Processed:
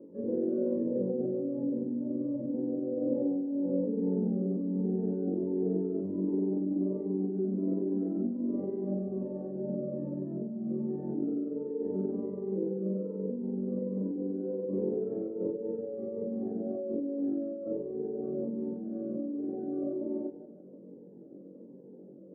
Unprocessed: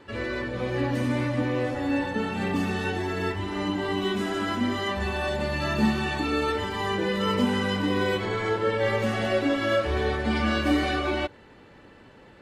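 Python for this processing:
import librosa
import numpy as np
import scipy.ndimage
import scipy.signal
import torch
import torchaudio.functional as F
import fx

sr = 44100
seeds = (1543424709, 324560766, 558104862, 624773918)

y = fx.over_compress(x, sr, threshold_db=-30.0, ratio=-1.0)
y = fx.stretch_grains(y, sr, factor=1.8, grain_ms=96.0)
y = scipy.signal.sosfilt(scipy.signal.cheby1(3, 1.0, [170.0, 530.0], 'bandpass', fs=sr, output='sos'), y)
y = fx.echo_split(y, sr, split_hz=370.0, low_ms=110, high_ms=160, feedback_pct=52, wet_db=-13.0)
y = fx.notch_cascade(y, sr, direction='falling', hz=1.3)
y = y * librosa.db_to_amplitude(2.5)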